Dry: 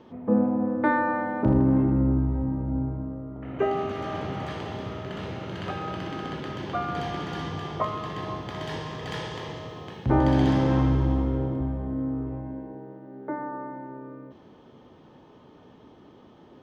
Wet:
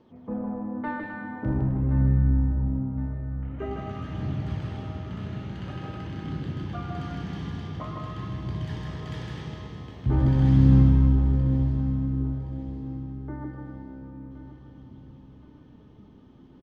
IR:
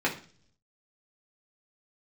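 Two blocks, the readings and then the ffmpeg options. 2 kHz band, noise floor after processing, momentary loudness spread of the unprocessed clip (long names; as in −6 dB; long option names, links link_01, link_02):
−7.5 dB, −51 dBFS, 16 LU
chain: -filter_complex "[0:a]asoftclip=type=tanh:threshold=-11.5dB,flanger=delay=0.2:depth=4.6:regen=67:speed=0.47:shape=sinusoidal,asplit=2[link_01][link_02];[link_02]aecho=0:1:157.4|259.5:0.708|0.316[link_03];[link_01][link_03]amix=inputs=2:normalize=0,asubboost=boost=5:cutoff=230,asplit=2[link_04][link_05];[link_05]aecho=0:1:1069|2138|3207|4276:0.2|0.0818|0.0335|0.0138[link_06];[link_04][link_06]amix=inputs=2:normalize=0,volume=-4.5dB"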